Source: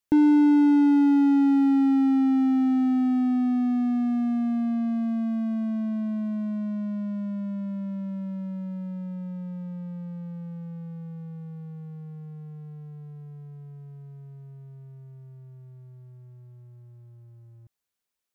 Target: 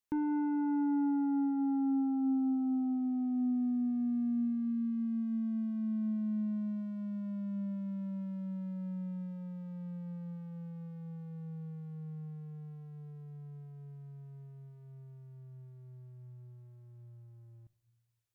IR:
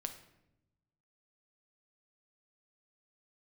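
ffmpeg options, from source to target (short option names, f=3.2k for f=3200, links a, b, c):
-filter_complex "[0:a]asoftclip=type=tanh:threshold=-23.5dB,asplit=2[a][b];[1:a]atrim=start_sample=2205,asetrate=33957,aresample=44100[c];[b][c]afir=irnorm=-1:irlink=0,volume=-8dB[d];[a][d]amix=inputs=2:normalize=0,volume=-8dB"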